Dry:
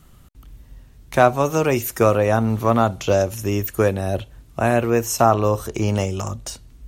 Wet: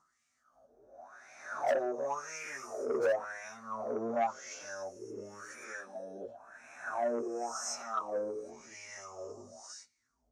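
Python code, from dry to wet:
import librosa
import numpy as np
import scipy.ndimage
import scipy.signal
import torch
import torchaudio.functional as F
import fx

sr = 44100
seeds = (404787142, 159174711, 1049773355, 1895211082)

y = fx.spec_swells(x, sr, rise_s=1.18)
y = scipy.signal.sosfilt(scipy.signal.butter(4, 10000.0, 'lowpass', fs=sr, output='sos'), y)
y = fx.peak_eq(y, sr, hz=240.0, db=11.0, octaves=0.21)
y = fx.notch(y, sr, hz=500.0, q=12.0)
y = fx.wah_lfo(y, sr, hz=1.4, low_hz=410.0, high_hz=2300.0, q=7.6)
y = np.clip(y, -10.0 ** (-13.0 / 20.0), 10.0 ** (-13.0 / 20.0))
y = fx.stretch_vocoder_free(y, sr, factor=1.5)
y = fx.high_shelf_res(y, sr, hz=4200.0, db=12.5, q=3.0)
y = fx.transformer_sat(y, sr, knee_hz=890.0)
y = y * librosa.db_to_amplitude(-4.0)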